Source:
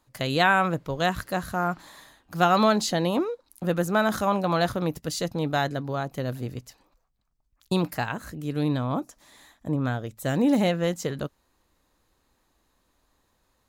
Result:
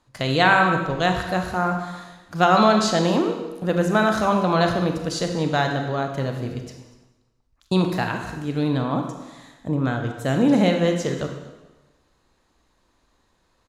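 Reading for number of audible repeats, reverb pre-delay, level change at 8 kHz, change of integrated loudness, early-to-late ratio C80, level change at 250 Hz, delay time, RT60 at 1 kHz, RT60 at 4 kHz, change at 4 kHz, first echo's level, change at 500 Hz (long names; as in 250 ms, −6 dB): 1, 25 ms, +2.0 dB, +4.5 dB, 7.5 dB, +4.5 dB, 241 ms, 1.1 s, 1.0 s, +4.0 dB, −20.0 dB, +4.5 dB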